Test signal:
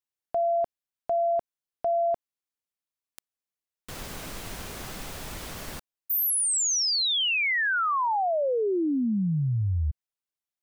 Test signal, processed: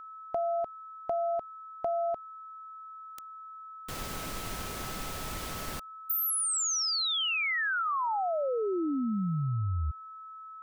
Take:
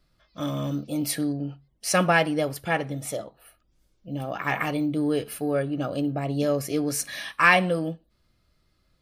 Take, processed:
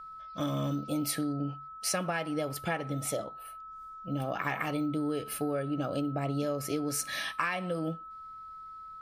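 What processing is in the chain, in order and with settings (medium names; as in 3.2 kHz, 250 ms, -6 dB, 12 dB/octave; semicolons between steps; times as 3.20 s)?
compression 16:1, threshold -28 dBFS; whistle 1.3 kHz -43 dBFS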